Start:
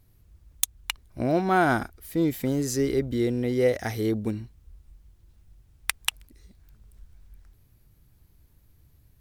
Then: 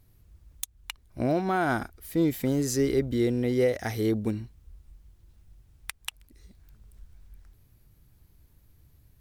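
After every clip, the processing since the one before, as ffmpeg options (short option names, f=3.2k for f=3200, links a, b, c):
-af "alimiter=limit=-14.5dB:level=0:latency=1:release=352"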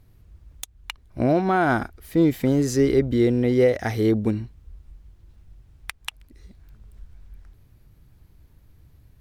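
-af "highshelf=f=5.5k:g=-10.5,volume=6dB"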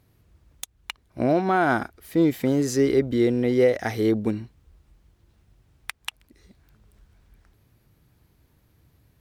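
-af "highpass=f=180:p=1"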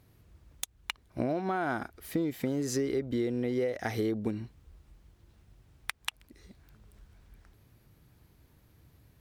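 -af "acompressor=threshold=-28dB:ratio=6"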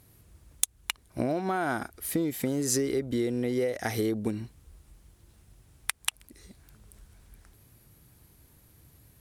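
-af "equalizer=f=10k:t=o:w=1.2:g=12.5,volume=2dB"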